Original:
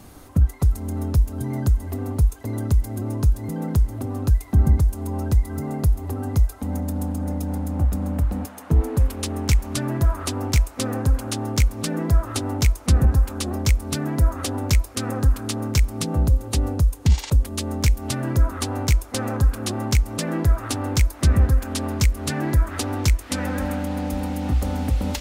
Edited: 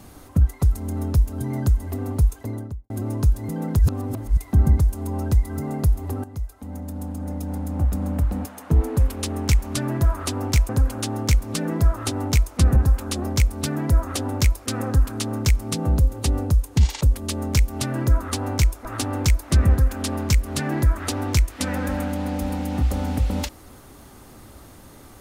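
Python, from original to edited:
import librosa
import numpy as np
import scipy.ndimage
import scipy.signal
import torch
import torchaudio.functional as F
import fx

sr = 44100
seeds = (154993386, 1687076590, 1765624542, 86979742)

y = fx.studio_fade_out(x, sr, start_s=2.35, length_s=0.55)
y = fx.edit(y, sr, fx.reverse_span(start_s=3.79, length_s=0.58),
    fx.fade_in_from(start_s=6.24, length_s=1.8, floor_db=-14.0),
    fx.cut(start_s=10.69, length_s=0.29),
    fx.cut(start_s=19.14, length_s=1.42), tone=tone)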